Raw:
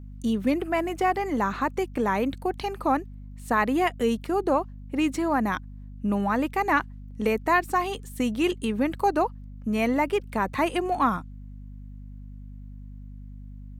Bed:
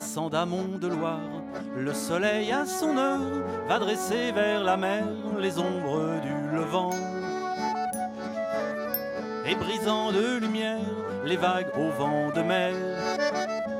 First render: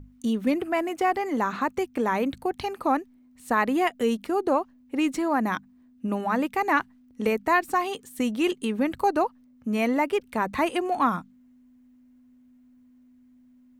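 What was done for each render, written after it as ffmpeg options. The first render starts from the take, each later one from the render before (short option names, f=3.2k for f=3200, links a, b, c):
-af "bandreject=f=50:t=h:w=6,bandreject=f=100:t=h:w=6,bandreject=f=150:t=h:w=6,bandreject=f=200:t=h:w=6"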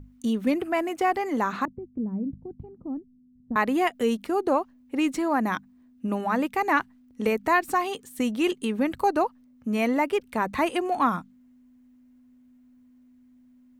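-filter_complex "[0:a]asettb=1/sr,asplit=3[a][b][c];[a]atrim=end=1.654[d];[b]atrim=start=1.65:end=3.56,asetpts=PTS-STARTPTS,afade=t=in:d=0.004:c=qsin,afade=t=out:st=1.906:d=0.004:c=qsin,lowpass=f=180:t=q:w=1.8[e];[c]atrim=start=3.556[f];[d][e]acrossfade=d=0.004:c1=hsin:c2=qsin[g];[g][f]acrossfade=d=0.004:c1=qsin:c2=hsin,asplit=3[h][i][j];[h]afade=t=out:st=7.43:d=0.02[k];[i]acompressor=mode=upward:threshold=-29dB:ratio=2.5:attack=3.2:release=140:knee=2.83:detection=peak,afade=t=in:st=7.43:d=0.02,afade=t=out:st=7.86:d=0.02[l];[j]afade=t=in:st=7.86:d=0.02[m];[k][l][m]amix=inputs=3:normalize=0"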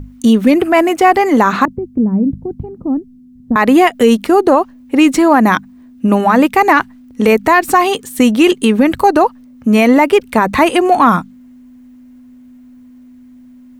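-af "acontrast=48,alimiter=level_in=10.5dB:limit=-1dB:release=50:level=0:latency=1"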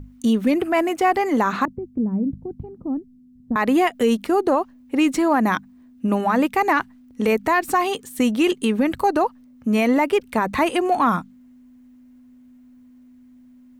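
-af "volume=-9dB"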